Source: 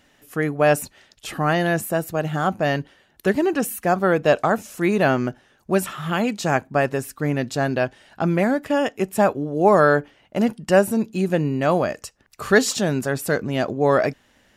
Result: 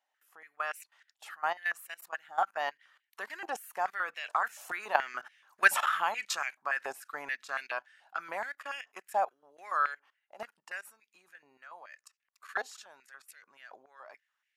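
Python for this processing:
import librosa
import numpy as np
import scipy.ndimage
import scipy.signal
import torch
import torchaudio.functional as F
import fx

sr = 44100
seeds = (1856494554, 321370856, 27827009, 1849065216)

y = fx.doppler_pass(x, sr, speed_mps=7, closest_m=4.2, pass_at_s=5.47)
y = fx.level_steps(y, sr, step_db=18)
y = fx.filter_held_highpass(y, sr, hz=7.0, low_hz=790.0, high_hz=2200.0)
y = y * librosa.db_to_amplitude(4.0)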